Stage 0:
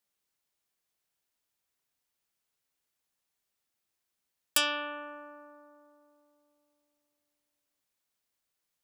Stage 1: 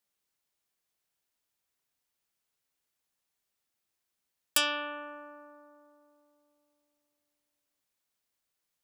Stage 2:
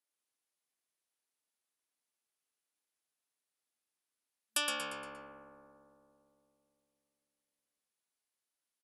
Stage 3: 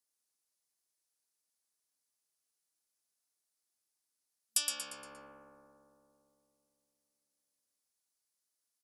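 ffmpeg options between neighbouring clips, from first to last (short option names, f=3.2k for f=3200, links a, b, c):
-af anull
-filter_complex "[0:a]aexciter=amount=1.1:drive=6.8:freq=9.4k,afftfilt=real='re*between(b*sr/4096,220,12000)':imag='im*between(b*sr/4096,220,12000)':win_size=4096:overlap=0.75,asplit=6[a][b][c][d][e][f];[b]adelay=117,afreqshift=-69,volume=-5dB[g];[c]adelay=234,afreqshift=-138,volume=-12.1dB[h];[d]adelay=351,afreqshift=-207,volume=-19.3dB[i];[e]adelay=468,afreqshift=-276,volume=-26.4dB[j];[f]adelay=585,afreqshift=-345,volume=-33.5dB[k];[a][g][h][i][j][k]amix=inputs=6:normalize=0,volume=-7dB"
-filter_complex "[0:a]highshelf=f=4k:t=q:w=1.5:g=6.5,acrossover=split=2400[a][b];[a]alimiter=level_in=17dB:limit=-24dB:level=0:latency=1,volume=-17dB[c];[c][b]amix=inputs=2:normalize=0,volume=-2.5dB"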